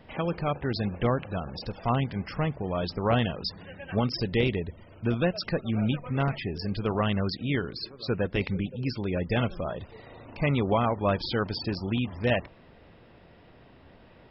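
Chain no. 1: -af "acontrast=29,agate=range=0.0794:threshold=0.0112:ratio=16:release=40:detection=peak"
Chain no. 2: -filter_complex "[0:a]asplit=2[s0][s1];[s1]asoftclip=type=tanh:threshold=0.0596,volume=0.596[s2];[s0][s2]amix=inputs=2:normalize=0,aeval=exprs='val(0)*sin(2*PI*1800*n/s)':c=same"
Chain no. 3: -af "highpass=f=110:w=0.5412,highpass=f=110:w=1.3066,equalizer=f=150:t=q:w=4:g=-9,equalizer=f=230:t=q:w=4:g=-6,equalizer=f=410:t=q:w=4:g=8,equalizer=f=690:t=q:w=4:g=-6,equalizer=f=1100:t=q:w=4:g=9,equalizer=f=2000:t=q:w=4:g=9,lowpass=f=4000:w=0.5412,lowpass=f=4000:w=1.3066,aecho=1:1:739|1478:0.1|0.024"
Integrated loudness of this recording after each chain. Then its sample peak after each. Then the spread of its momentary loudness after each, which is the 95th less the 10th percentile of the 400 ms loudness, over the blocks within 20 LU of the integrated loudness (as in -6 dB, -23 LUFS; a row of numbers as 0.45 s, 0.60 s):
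-24.0 LUFS, -26.5 LUFS, -28.0 LUFS; -7.5 dBFS, -10.5 dBFS, -8.5 dBFS; 8 LU, 8 LU, 14 LU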